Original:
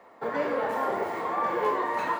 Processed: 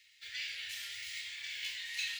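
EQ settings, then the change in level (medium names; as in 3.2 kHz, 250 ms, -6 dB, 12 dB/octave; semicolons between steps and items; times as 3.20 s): inverse Chebyshev band-stop 190–1200 Hz, stop band 50 dB; three-band isolator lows -13 dB, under 380 Hz, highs -12 dB, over 6.6 kHz; treble shelf 2.1 kHz +10.5 dB; +4.5 dB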